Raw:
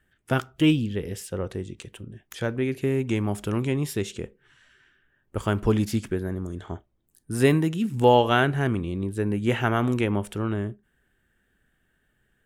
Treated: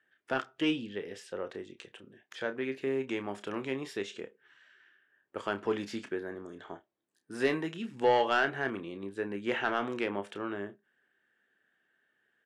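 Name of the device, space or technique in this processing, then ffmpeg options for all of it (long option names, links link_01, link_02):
intercom: -filter_complex "[0:a]highpass=360,lowpass=4700,equalizer=frequency=1700:width_type=o:width=0.33:gain=4,asoftclip=type=tanh:threshold=-12.5dB,asplit=2[link_01][link_02];[link_02]adelay=30,volume=-10dB[link_03];[link_01][link_03]amix=inputs=2:normalize=0,volume=-4.5dB"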